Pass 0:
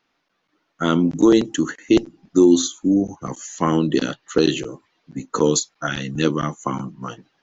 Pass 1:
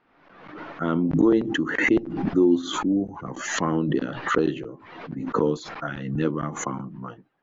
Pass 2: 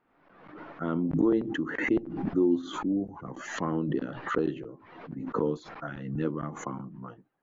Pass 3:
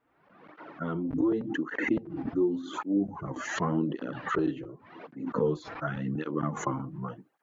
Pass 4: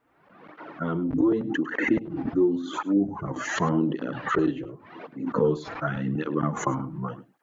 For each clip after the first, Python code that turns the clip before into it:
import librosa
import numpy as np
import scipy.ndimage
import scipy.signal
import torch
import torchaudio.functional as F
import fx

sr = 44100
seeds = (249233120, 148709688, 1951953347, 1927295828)

y1 = scipy.signal.sosfilt(scipy.signal.butter(2, 1700.0, 'lowpass', fs=sr, output='sos'), x)
y1 = fx.pre_swell(y1, sr, db_per_s=52.0)
y1 = y1 * librosa.db_to_amplitude(-5.5)
y2 = fx.high_shelf(y1, sr, hz=2700.0, db=-9.5)
y2 = y2 * librosa.db_to_amplitude(-5.5)
y3 = fx.rider(y2, sr, range_db=5, speed_s=0.5)
y3 = fx.flanger_cancel(y3, sr, hz=0.88, depth_ms=5.7)
y3 = y3 * librosa.db_to_amplitude(3.0)
y4 = y3 + 10.0 ** (-18.0 / 20.0) * np.pad(y3, (int(103 * sr / 1000.0), 0))[:len(y3)]
y4 = y4 * librosa.db_to_amplitude(4.5)